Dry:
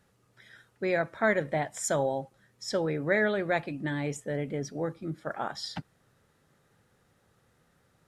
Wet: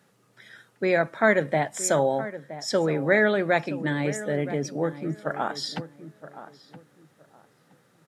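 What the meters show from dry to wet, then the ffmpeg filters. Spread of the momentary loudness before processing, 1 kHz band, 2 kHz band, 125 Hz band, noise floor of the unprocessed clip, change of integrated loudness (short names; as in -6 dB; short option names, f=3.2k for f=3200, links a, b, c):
11 LU, +5.5 dB, +5.5 dB, +4.5 dB, -69 dBFS, +5.5 dB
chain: -filter_complex "[0:a]highpass=f=130:w=0.5412,highpass=f=130:w=1.3066,asplit=2[a][b];[b]adelay=970,lowpass=f=1.7k:p=1,volume=-13.5dB,asplit=2[c][d];[d]adelay=970,lowpass=f=1.7k:p=1,volume=0.23,asplit=2[e][f];[f]adelay=970,lowpass=f=1.7k:p=1,volume=0.23[g];[a][c][e][g]amix=inputs=4:normalize=0,volume=5.5dB"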